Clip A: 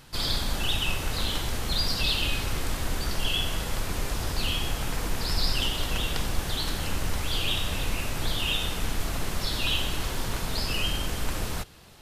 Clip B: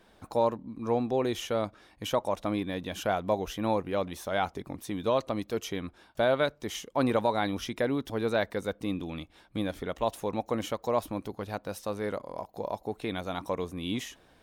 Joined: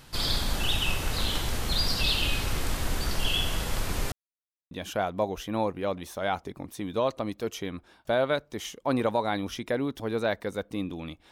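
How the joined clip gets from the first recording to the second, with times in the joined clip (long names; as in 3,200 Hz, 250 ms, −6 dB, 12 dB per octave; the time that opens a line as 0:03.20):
clip A
0:04.12–0:04.71: silence
0:04.71: continue with clip B from 0:02.81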